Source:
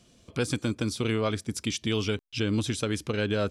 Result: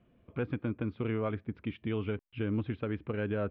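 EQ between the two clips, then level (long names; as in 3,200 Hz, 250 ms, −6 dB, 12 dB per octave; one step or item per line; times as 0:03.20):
low-pass filter 2,600 Hz 24 dB per octave
high-frequency loss of the air 340 metres
−4.5 dB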